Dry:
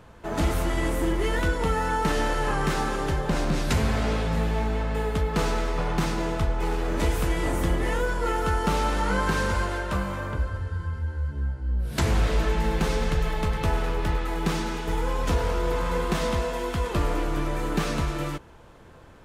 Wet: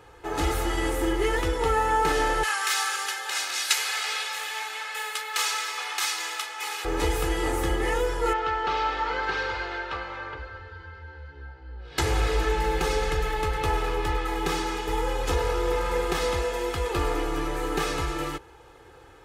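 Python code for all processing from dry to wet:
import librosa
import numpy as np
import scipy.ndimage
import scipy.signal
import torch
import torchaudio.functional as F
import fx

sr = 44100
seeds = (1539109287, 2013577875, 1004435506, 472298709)

y = fx.chain(x, sr, fx.highpass(hz=1300.0, slope=12),
    fx.high_shelf(hz=2200.0, db=9.5), at=(2.43, 6.85))
y = fx.chain(y, sr, fx.lowpass(hz=4500.0, slope=24),
    fx.low_shelf(hz=420.0, db=-12.0), at=(8.33, 11.98))
y = scipy.signal.sosfilt(scipy.signal.butter(2, 42.0, 'highpass', fs=sr, output='sos'), y)
y = fx.peak_eq(y, sr, hz=95.0, db=-7.0, octaves=3.0)
y = y + 0.8 * np.pad(y, (int(2.4 * sr / 1000.0), 0))[:len(y)]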